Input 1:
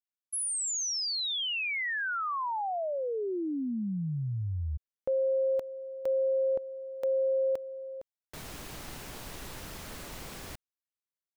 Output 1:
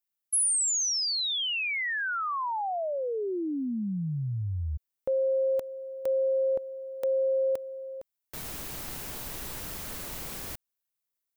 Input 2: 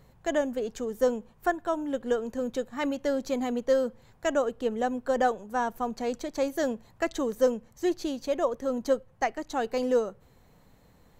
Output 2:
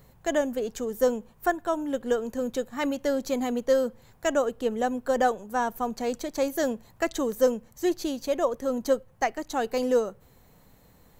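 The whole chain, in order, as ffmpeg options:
-af "highshelf=f=10k:g=12,volume=1.5dB"

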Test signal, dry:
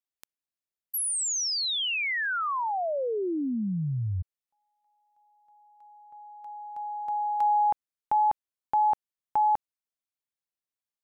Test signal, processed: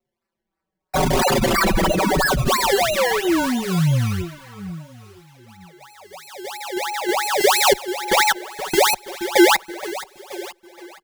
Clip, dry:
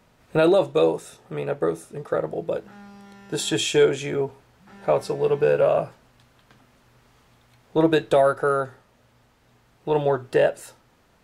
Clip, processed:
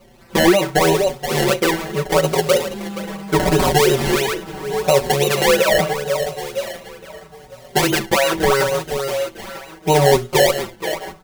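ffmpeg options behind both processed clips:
-filter_complex "[0:a]asplit=2[a][b];[b]adelay=959,lowpass=f=1.6k:p=1,volume=-23.5dB,asplit=2[c][d];[d]adelay=959,lowpass=f=1.6k:p=1,volume=0.17[e];[c][e]amix=inputs=2:normalize=0[f];[a][f]amix=inputs=2:normalize=0,acrusher=samples=25:mix=1:aa=0.000001:lfo=1:lforange=25:lforate=3,aecho=1:1:5.3:0.63,asplit=2[g][h];[h]aecho=0:1:474|948|1422|1896:0.188|0.081|0.0348|0.015[i];[g][i]amix=inputs=2:normalize=0,alimiter=level_in=15dB:limit=-1dB:release=50:level=0:latency=1,asplit=2[j][k];[k]adelay=5.2,afreqshift=-0.77[l];[j][l]amix=inputs=2:normalize=1,volume=-2.5dB"

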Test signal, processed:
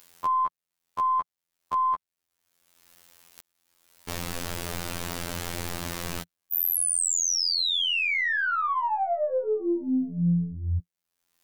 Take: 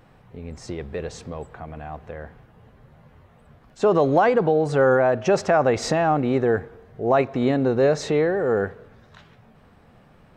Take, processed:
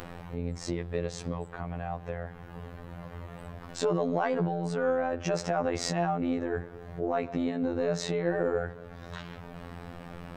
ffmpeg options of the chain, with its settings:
-af "adynamicequalizer=threshold=0.00631:dfrequency=140:dqfactor=3.4:tfrequency=140:tqfactor=3.4:attack=5:release=100:ratio=0.375:range=4:mode=boostabove:tftype=bell,alimiter=limit=-17dB:level=0:latency=1:release=70,acompressor=mode=upward:threshold=-26dB:ratio=2.5,aeval=exprs='(tanh(3.55*val(0)+0.1)-tanh(0.1))/3.55':c=same,afftfilt=real='hypot(re,im)*cos(PI*b)':imag='0':win_size=2048:overlap=0.75"

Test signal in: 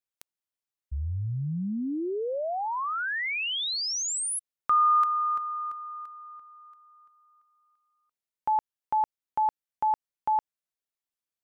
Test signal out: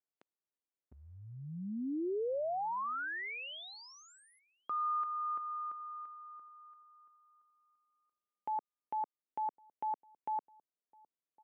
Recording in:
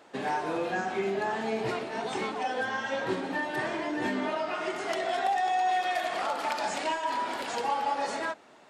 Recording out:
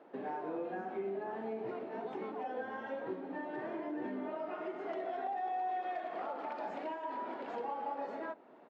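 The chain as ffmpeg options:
-filter_complex "[0:a]tiltshelf=f=730:g=8.5,acompressor=threshold=-31dB:ratio=2.5:attack=0.12:release=576:knee=1:detection=rms,highpass=290,lowpass=2.5k,asplit=2[a][b];[b]adelay=1108,volume=-26dB,highshelf=f=4k:g=-24.9[c];[a][c]amix=inputs=2:normalize=0,volume=-3dB"

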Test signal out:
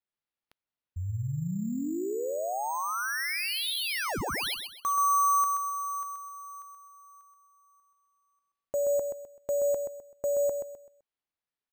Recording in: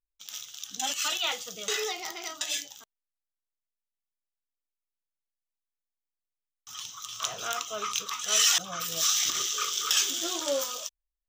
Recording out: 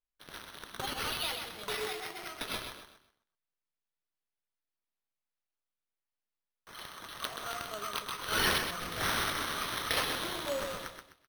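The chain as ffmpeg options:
-af "aecho=1:1:128|256|384|512:0.501|0.155|0.0482|0.0149,acrusher=samples=6:mix=1:aa=0.000001,volume=-6.5dB"

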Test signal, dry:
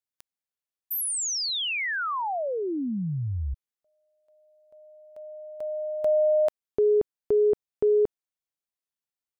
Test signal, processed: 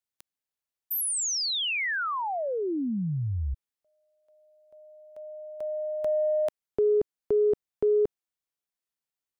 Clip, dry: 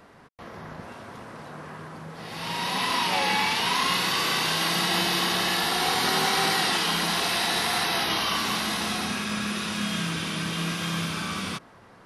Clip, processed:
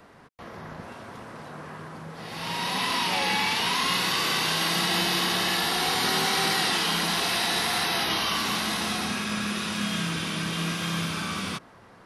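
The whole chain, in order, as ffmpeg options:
-filter_complex "[0:a]acrossover=split=400|1700[a][b][c];[b]acompressor=threshold=-31dB:ratio=2:attack=3:release=28:knee=2.83:detection=peak[d];[a][d][c]amix=inputs=3:normalize=0"

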